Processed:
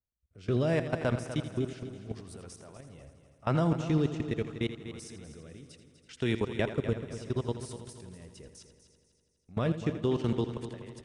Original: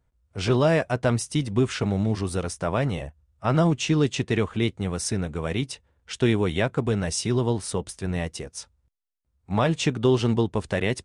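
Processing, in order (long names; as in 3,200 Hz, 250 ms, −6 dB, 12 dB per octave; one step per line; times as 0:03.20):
output level in coarse steps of 22 dB
rotating-speaker cabinet horn 0.75 Hz
echo machine with several playback heads 82 ms, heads first and third, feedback 58%, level −12 dB
level −3.5 dB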